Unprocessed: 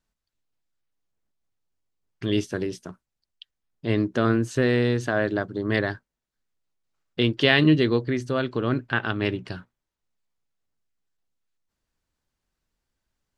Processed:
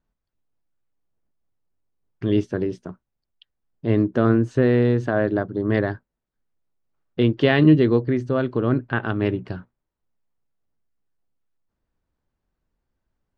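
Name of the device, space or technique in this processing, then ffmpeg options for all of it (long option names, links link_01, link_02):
through cloth: -af "lowpass=8100,highshelf=frequency=2100:gain=-16.5,volume=4.5dB"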